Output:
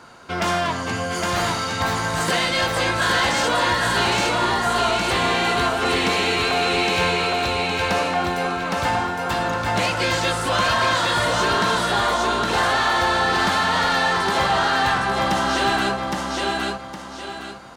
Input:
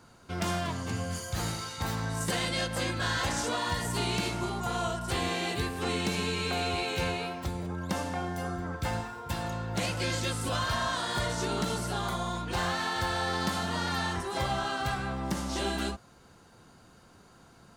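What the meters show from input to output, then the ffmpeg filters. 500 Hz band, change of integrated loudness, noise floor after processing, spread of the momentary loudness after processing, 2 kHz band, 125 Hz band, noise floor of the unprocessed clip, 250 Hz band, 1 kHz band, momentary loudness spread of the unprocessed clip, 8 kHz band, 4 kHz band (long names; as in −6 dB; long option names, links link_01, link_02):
+11.5 dB, +11.5 dB, −34 dBFS, 5 LU, +14.0 dB, +4.0 dB, −57 dBFS, +7.5 dB, +13.5 dB, 5 LU, +8.0 dB, +11.5 dB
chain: -filter_complex "[0:a]aecho=1:1:813|1626|2439|3252:0.708|0.219|0.068|0.0211,asplit=2[link_01][link_02];[link_02]highpass=frequency=720:poles=1,volume=15dB,asoftclip=type=tanh:threshold=-15dB[link_03];[link_01][link_03]amix=inputs=2:normalize=0,lowpass=frequency=2800:poles=1,volume=-6dB,volume=6dB"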